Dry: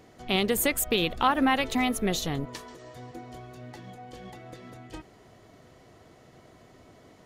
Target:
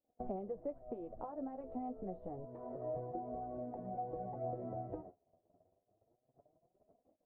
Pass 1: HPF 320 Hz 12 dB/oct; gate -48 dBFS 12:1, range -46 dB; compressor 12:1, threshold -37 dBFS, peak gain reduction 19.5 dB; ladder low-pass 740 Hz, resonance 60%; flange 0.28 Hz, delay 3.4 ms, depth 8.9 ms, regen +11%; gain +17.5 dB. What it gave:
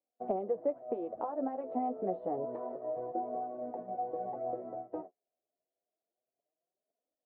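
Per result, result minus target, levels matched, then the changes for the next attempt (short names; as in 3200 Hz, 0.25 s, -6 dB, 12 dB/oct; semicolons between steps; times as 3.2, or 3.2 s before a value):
compressor: peak gain reduction -9 dB; 250 Hz band -2.0 dB
change: compressor 12:1, threshold -46.5 dBFS, peak gain reduction 28.5 dB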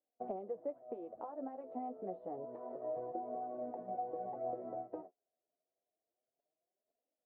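250 Hz band -3.5 dB
remove: HPF 320 Hz 12 dB/oct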